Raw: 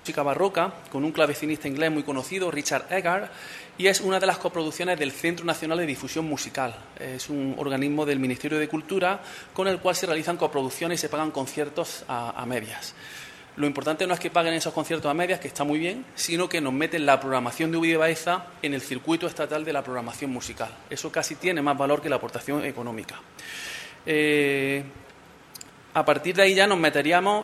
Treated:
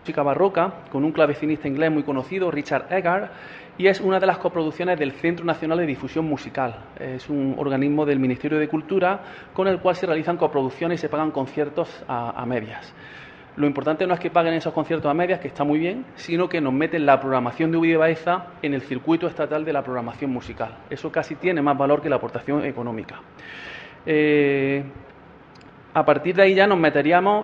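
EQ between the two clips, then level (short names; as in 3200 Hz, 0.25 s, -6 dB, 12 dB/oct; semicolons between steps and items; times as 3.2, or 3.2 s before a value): air absorption 160 m; tape spacing loss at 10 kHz 21 dB; +6.0 dB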